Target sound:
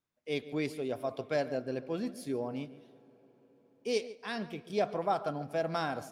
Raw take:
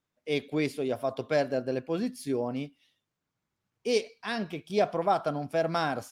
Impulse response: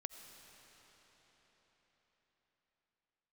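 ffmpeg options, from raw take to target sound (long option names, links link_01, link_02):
-filter_complex "[0:a]asplit=2[link_01][link_02];[1:a]atrim=start_sample=2205,highshelf=frequency=2100:gain=-9,adelay=143[link_03];[link_02][link_03]afir=irnorm=-1:irlink=0,volume=-9.5dB[link_04];[link_01][link_04]amix=inputs=2:normalize=0,volume=-5dB"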